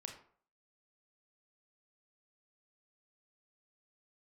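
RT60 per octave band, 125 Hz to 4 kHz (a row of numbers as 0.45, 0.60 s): 0.45, 0.45, 0.50, 0.50, 0.40, 0.30 s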